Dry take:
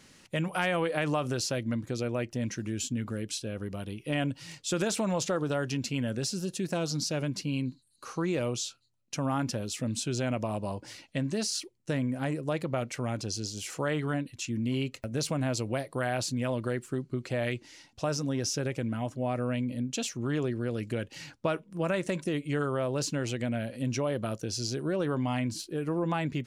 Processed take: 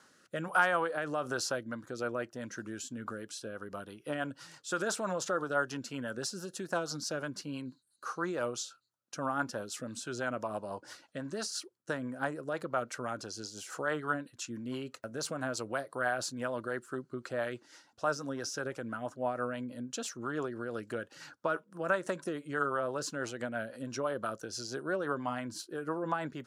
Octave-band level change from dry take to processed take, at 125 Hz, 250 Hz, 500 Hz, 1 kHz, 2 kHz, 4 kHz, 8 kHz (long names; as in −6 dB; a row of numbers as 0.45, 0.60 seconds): −13.5, −8.0, −3.5, +1.0, +1.5, −6.0, −5.0 decibels